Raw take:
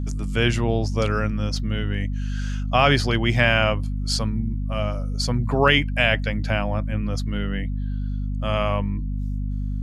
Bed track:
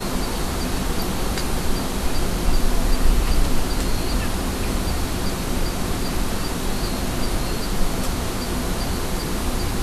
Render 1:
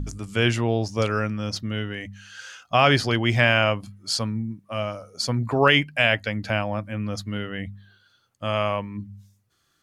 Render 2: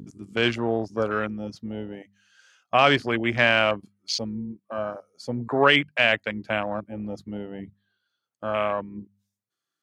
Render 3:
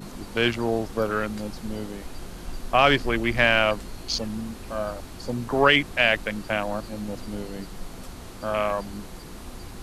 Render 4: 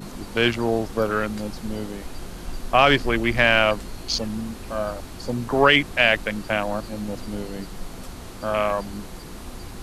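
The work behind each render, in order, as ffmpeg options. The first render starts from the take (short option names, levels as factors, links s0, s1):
-af "bandreject=f=50:t=h:w=4,bandreject=f=100:t=h:w=4,bandreject=f=150:t=h:w=4,bandreject=f=200:t=h:w=4,bandreject=f=250:t=h:w=4"
-af "highpass=200,afwtdn=0.0398"
-filter_complex "[1:a]volume=0.158[s0];[0:a][s0]amix=inputs=2:normalize=0"
-af "volume=1.33,alimiter=limit=0.708:level=0:latency=1"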